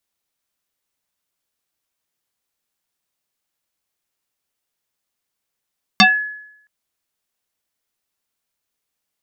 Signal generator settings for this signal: FM tone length 0.67 s, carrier 1.7 kHz, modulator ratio 0.56, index 4.4, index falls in 0.23 s exponential, decay 0.77 s, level -4.5 dB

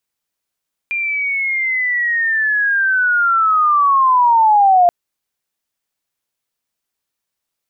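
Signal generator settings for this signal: sweep linear 2.4 kHz -> 690 Hz -17 dBFS -> -7 dBFS 3.98 s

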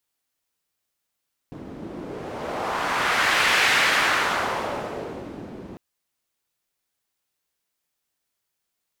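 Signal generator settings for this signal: wind-like swept noise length 4.25 s, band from 260 Hz, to 2 kHz, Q 1.3, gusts 1, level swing 19 dB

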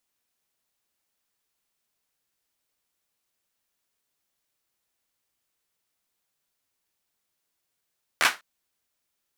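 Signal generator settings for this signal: hand clap length 0.20 s, apart 13 ms, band 1.5 kHz, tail 0.22 s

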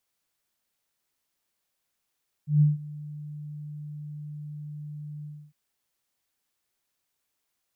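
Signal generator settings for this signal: ADSR sine 149 Hz, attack 141 ms, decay 162 ms, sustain -21 dB, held 2.77 s, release 286 ms -14.5 dBFS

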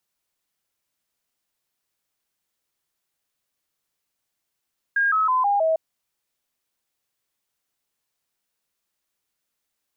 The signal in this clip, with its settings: stepped sine 1.62 kHz down, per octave 3, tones 5, 0.16 s, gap 0.00 s -17 dBFS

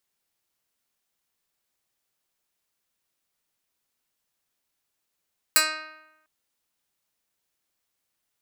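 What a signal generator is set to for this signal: plucked string D#4, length 0.70 s, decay 0.96 s, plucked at 0.1, medium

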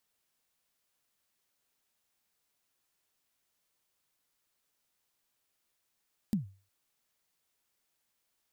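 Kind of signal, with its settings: kick drum length 0.36 s, from 230 Hz, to 97 Hz, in 128 ms, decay 0.36 s, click on, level -22.5 dB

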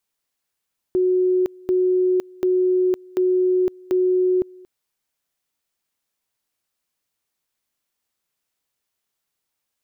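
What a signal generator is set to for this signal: two-level tone 367 Hz -15 dBFS, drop 25.5 dB, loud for 0.51 s, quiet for 0.23 s, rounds 5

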